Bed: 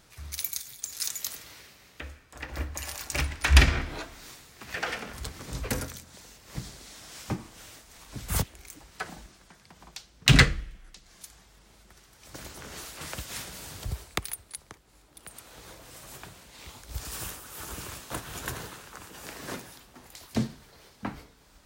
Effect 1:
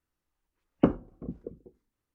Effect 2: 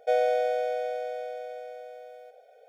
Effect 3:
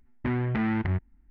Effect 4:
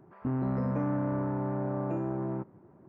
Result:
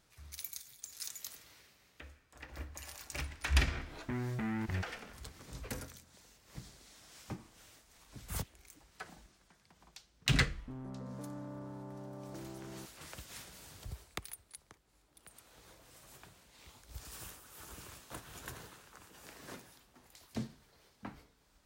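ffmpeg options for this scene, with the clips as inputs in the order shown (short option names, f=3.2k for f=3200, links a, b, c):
-filter_complex "[0:a]volume=-11.5dB[a];[3:a]atrim=end=1.3,asetpts=PTS-STARTPTS,volume=-10dB,afade=t=in:d=0.004:c=hsin,afade=t=out:st=1.296:d=0.004:c=hsin,adelay=3840[b];[4:a]atrim=end=2.88,asetpts=PTS-STARTPTS,volume=-15dB,afade=t=in:d=0.004:c=hsin,afade=t=out:st=2.876:d=0.004:c=hsin,adelay=10430[c];[a][b][c]amix=inputs=3:normalize=0"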